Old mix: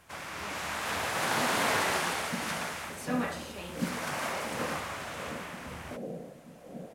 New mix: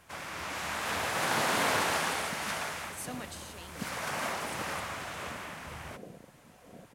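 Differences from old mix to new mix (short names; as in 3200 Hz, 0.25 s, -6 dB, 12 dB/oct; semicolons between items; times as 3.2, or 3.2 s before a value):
speech: add bell 11000 Hz +8.5 dB 1.3 oct; reverb: off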